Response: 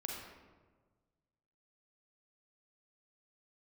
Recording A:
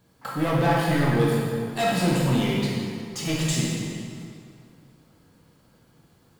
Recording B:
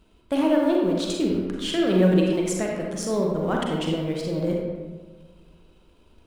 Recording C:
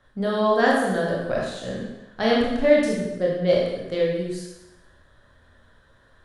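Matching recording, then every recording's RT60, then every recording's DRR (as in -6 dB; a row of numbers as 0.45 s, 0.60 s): B; 2.2 s, 1.4 s, 0.95 s; -5.0 dB, -1.0 dB, -4.0 dB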